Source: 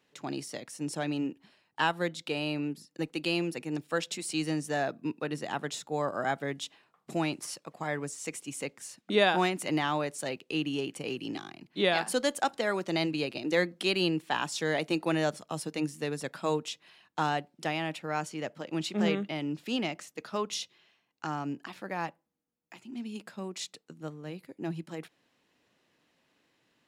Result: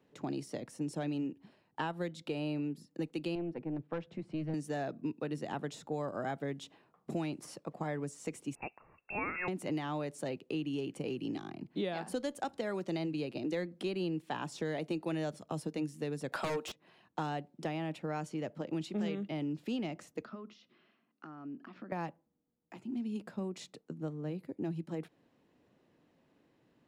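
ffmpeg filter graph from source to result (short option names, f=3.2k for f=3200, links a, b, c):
-filter_complex "[0:a]asettb=1/sr,asplit=3[a][b][c];[a]atrim=end=3.354[d];[b]atrim=start=3.35:end=4.54,asetpts=PTS-STARTPTS,afade=t=in:d=0.004:c=qsin,afade=t=out:st=1.186:d=0.004:c=qsin,lowpass=1.7k,asubboost=boost=9.5:cutoff=160,aeval=exprs='(tanh(20*val(0)+0.6)-tanh(0.6))/20':c=same[e];[c]atrim=start=4.536[f];[d][e]acrossfade=d=0.004:c1=hsin:c2=qsin[g];[g][f]acrossfade=d=0.004:c1=qsin:c2=hsin,asettb=1/sr,asplit=3[h][i][j];[h]atrim=end=8.554[k];[i]atrim=start=8.55:end=9.48,asetpts=PTS-STARTPTS,afade=t=in:d=0.004:c=qsin,afade=t=out:st=0.926:d=0.004:c=qsin,equalizer=f=440:t=o:w=0.27:g=-9,lowpass=f=2.5k:t=q:w=0.5098,lowpass=f=2.5k:t=q:w=0.6013,lowpass=f=2.5k:t=q:w=0.9,lowpass=f=2.5k:t=q:w=2.563,afreqshift=-2900[l];[j]atrim=start=9.476[m];[k][l]acrossfade=d=0.004:c1=hsin:c2=qsin[n];[n][m]acrossfade=d=0.004:c1=qsin:c2=hsin,asettb=1/sr,asplit=3[o][p][q];[o]atrim=end=16.324[r];[p]atrim=start=16.32:end=16.72,asetpts=PTS-STARTPTS,afade=t=in:d=0.004:c=qsin,afade=t=out:st=0.396:d=0.004:c=qsin,highpass=600,aeval=exprs='0.106*sin(PI/2*4.47*val(0)/0.106)':c=same[s];[q]atrim=start=16.716[t];[r][s]acrossfade=d=0.004:c1=hsin:c2=qsin[u];[u][t]acrossfade=d=0.004:c1=qsin:c2=hsin,asettb=1/sr,asplit=3[v][w][x];[v]atrim=end=20.254[y];[w]atrim=start=20.25:end=21.92,asetpts=PTS-STARTPTS,afade=t=in:d=0.004:c=qsin,afade=t=out:st=1.666:d=0.004:c=qsin,acompressor=threshold=-47dB:ratio=6:attack=3.2:release=140:knee=1:detection=peak,highpass=200,equalizer=f=230:t=q:w=4:g=8,equalizer=f=490:t=q:w=4:g=-6,equalizer=f=860:t=q:w=4:g=-7,equalizer=f=1.3k:t=q:w=4:g=7,equalizer=f=3.8k:t=q:w=4:g=-4,lowpass=f=4.9k:w=0.5412,lowpass=f=4.9k:w=1.3066[z];[x]atrim=start=21.916[aa];[y][z]acrossfade=d=0.004:c1=hsin:c2=qsin[ab];[ab][aa]acrossfade=d=0.004:c1=qsin:c2=hsin,tiltshelf=f=1.1k:g=8.5,acrossover=split=110|2100[ac][ad][ae];[ac]acompressor=threshold=-55dB:ratio=4[af];[ad]acompressor=threshold=-34dB:ratio=4[ag];[ae]acompressor=threshold=-45dB:ratio=4[ah];[af][ag][ah]amix=inputs=3:normalize=0,volume=-1.5dB"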